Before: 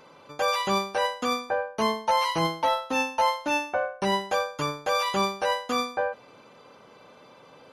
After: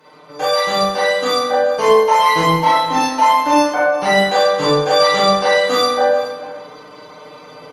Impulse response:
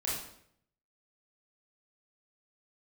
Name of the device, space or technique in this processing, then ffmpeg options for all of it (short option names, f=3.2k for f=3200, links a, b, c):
far-field microphone of a smart speaker: -filter_complex "[0:a]asettb=1/sr,asplit=3[a][b][c];[a]atrim=end=4.314[d];[b]atrim=start=4.31:end=5.56,asetpts=PTS-STARTPTS,afade=t=in:d=0.004:c=qsin,afade=t=out:st=1.246:d=0.004:c=qsin,lowpass=9.6k[e];[c]atrim=start=5.556[f];[d][e]acrossfade=d=0.004:c1=hsin:c2=qsin[g];[g][f]acrossfade=d=0.004:c1=qsin:c2=hsin,aecho=1:1:6.6:0.94,aecho=1:1:186|421:0.141|0.15[h];[1:a]atrim=start_sample=2205[i];[h][i]afir=irnorm=-1:irlink=0,highpass=150,dynaudnorm=f=770:g=3:m=5dB,volume=1.5dB" -ar 48000 -c:a libopus -b:a 32k